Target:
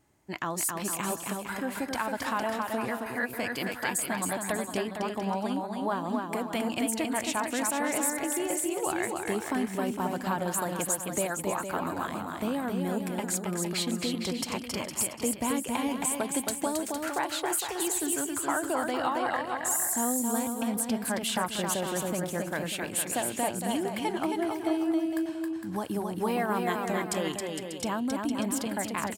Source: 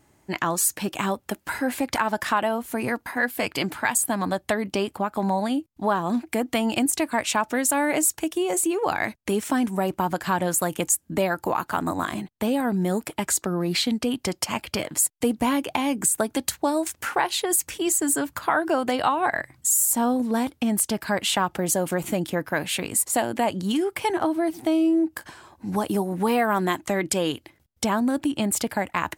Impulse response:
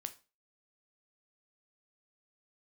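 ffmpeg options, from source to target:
-af "aecho=1:1:270|459|591.3|683.9|748.7:0.631|0.398|0.251|0.158|0.1,volume=-8dB"

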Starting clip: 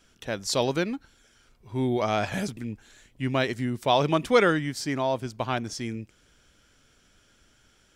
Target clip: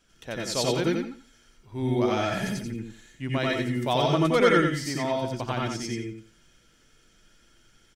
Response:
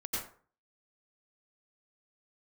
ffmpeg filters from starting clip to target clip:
-filter_complex "[0:a]aecho=1:1:87|174|261:0.501|0.105|0.0221[link_01];[1:a]atrim=start_sample=2205,atrim=end_sample=4410[link_02];[link_01][link_02]afir=irnorm=-1:irlink=0"

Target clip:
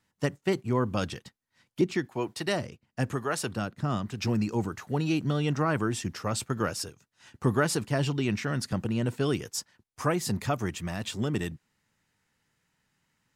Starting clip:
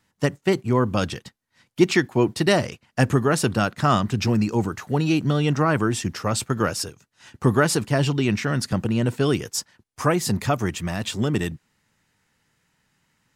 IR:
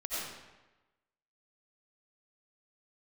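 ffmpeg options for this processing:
-filter_complex "[0:a]asettb=1/sr,asplit=3[link_01][link_02][link_03];[link_01]atrim=end=1.814[link_04];[link_02]atrim=start=1.81:end=4.24,asetpts=PTS-STARTPTS,afade=type=in:duration=0.004:curve=qsin,afade=type=out:start_time=2.426:duration=0.004:curve=qsin,acrossover=split=470[link_05][link_06];[link_05]aeval=exprs='val(0)*(1-0.7/2+0.7/2*cos(2*PI*1*n/s))':channel_layout=same[link_07];[link_06]aeval=exprs='val(0)*(1-0.7/2-0.7/2*cos(2*PI*1*n/s))':channel_layout=same[link_08];[link_07][link_08]amix=inputs=2:normalize=0[link_09];[link_03]atrim=start=4.236[link_10];[link_04][link_09]acrossfade=duration=0.004:curve1=hsin:curve2=qsin[link_11];[link_11][link_10]acrossfade=duration=0.004:curve1=qsin:curve2=hsin,volume=-6.5dB"

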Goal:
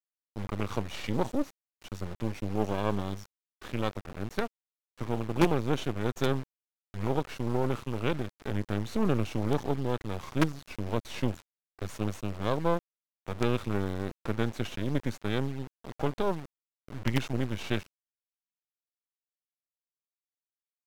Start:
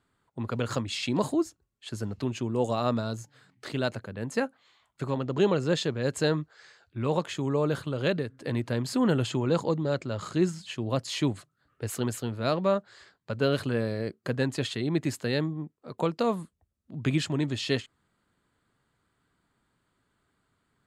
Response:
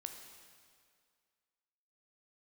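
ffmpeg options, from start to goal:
-af "acrusher=bits=4:dc=4:mix=0:aa=0.000001,aemphasis=mode=reproduction:type=cd,asetrate=38170,aresample=44100,atempo=1.15535"

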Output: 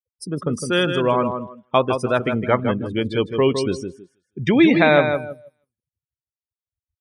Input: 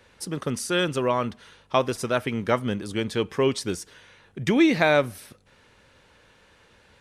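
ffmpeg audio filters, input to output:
ffmpeg -i in.wav -af "afftfilt=real='re*gte(hypot(re,im),0.01)':imag='im*gte(hypot(re,im),0.01)':win_size=1024:overlap=0.75,aecho=1:1:159|318|477|636:0.473|0.147|0.0455|0.0141,afftdn=noise_reduction=20:noise_floor=-32,volume=4.5dB" out.wav

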